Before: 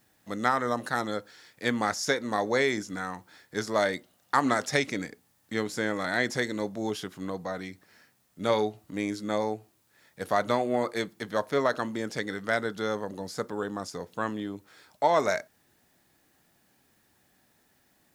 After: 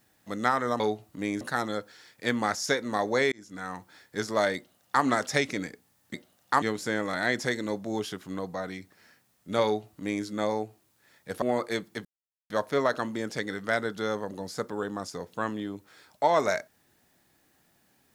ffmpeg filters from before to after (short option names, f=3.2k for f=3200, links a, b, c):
-filter_complex "[0:a]asplit=8[a][b][c][d][e][f][g][h];[a]atrim=end=0.802[i];[b]atrim=start=8.548:end=9.162[j];[c]atrim=start=0.798:end=2.71,asetpts=PTS-STARTPTS,afade=t=out:st=1.908:d=0.004:c=hsin[k];[d]atrim=start=2.71:end=5.532,asetpts=PTS-STARTPTS,afade=t=in:d=0.44[l];[e]atrim=start=3.948:end=4.432[m];[f]atrim=start=5.528:end=10.332[n];[g]atrim=start=10.668:end=11.3,asetpts=PTS-STARTPTS,afade=t=out:st=0.628:d=0.004:c=hsin,apad=pad_dur=0.45[o];[h]atrim=start=11.3,asetpts=PTS-STARTPTS,afade=t=in:d=0.004:c=hsin[p];[i][j]acrossfade=d=0.004:c1=hsin:c2=hsin[q];[k][l]concat=n=2:v=0:a=1[r];[q][r]acrossfade=d=0.004:c1=hsin:c2=hsin[s];[s][m]acrossfade=d=0.004:c1=hsin:c2=hsin[t];[t][n]acrossfade=d=0.004:c1=hsin:c2=hsin[u];[o][p]concat=n=2:v=0:a=1[v];[u][v]acrossfade=d=0.004:c1=hsin:c2=hsin"